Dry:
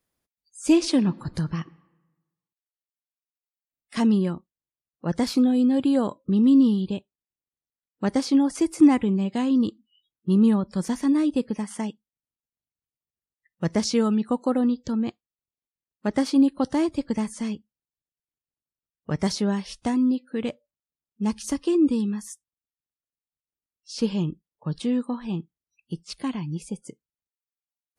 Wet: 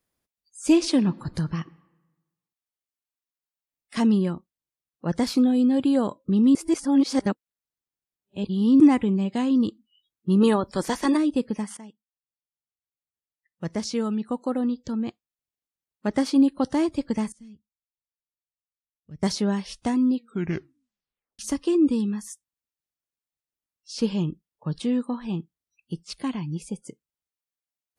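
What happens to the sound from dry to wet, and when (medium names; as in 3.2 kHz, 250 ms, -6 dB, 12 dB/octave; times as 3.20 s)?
6.55–8.80 s: reverse
10.40–11.16 s: spectral peaks clipped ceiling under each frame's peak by 15 dB
11.77–16.30 s: fade in, from -15 dB
17.32–19.23 s: amplifier tone stack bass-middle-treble 10-0-1
20.15 s: tape stop 1.24 s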